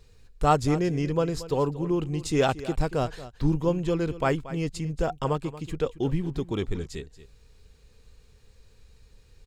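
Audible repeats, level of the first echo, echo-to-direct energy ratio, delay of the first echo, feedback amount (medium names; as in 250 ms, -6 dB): 1, -15.5 dB, -15.5 dB, 230 ms, no regular repeats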